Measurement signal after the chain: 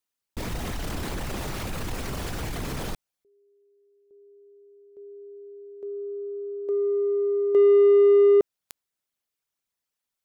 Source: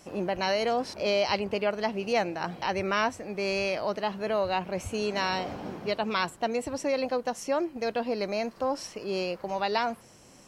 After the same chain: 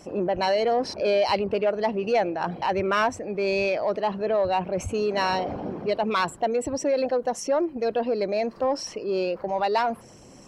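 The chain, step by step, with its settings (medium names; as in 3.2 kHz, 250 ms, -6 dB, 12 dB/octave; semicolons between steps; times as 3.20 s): resonances exaggerated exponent 1.5; in parallel at -4 dB: saturation -26.5 dBFS; on the sum: trim +1.5 dB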